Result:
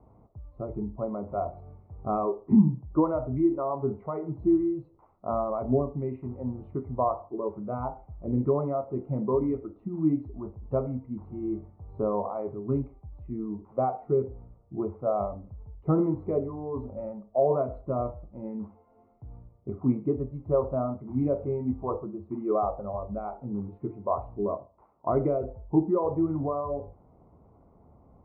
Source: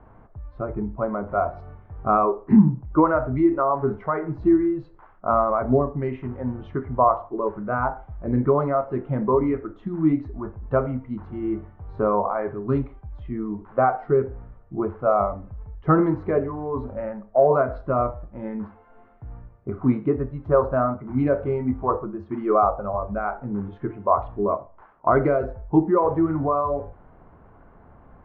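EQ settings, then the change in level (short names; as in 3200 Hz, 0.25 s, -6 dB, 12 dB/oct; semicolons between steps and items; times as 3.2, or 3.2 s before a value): running mean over 27 samples; HPF 50 Hz; -4.5 dB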